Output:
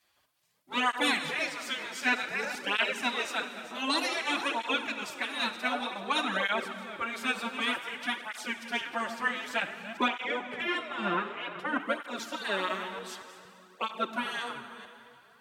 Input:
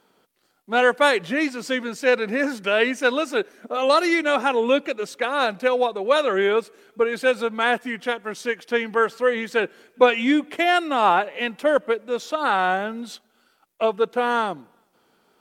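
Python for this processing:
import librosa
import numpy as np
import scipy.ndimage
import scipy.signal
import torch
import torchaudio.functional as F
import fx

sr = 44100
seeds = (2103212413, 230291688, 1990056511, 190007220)

y = fx.reverse_delay(x, sr, ms=232, wet_db=-13.0)
y = fx.lowpass(y, sr, hz=1600.0, slope=6, at=(10.08, 11.8))
y = fx.spec_gate(y, sr, threshold_db=-10, keep='weak')
y = fx.rev_plate(y, sr, seeds[0], rt60_s=2.9, hf_ratio=0.85, predelay_ms=0, drr_db=8.5)
y = fx.flanger_cancel(y, sr, hz=0.54, depth_ms=7.7)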